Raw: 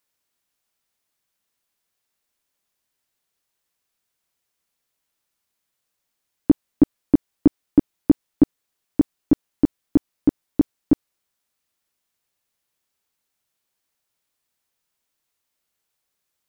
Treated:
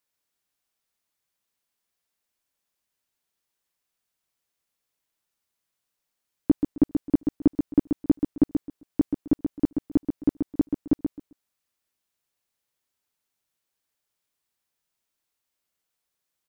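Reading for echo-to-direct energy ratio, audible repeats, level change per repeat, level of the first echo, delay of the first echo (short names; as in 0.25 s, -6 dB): -6.0 dB, 3, -14.0 dB, -6.0 dB, 0.132 s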